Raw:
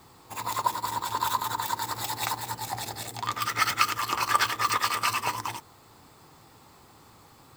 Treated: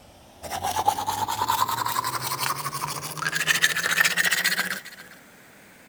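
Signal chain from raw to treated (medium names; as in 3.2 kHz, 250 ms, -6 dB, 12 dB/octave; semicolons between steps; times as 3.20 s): gliding tape speed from 66% -> 191%; delay 405 ms -19 dB; trim +4 dB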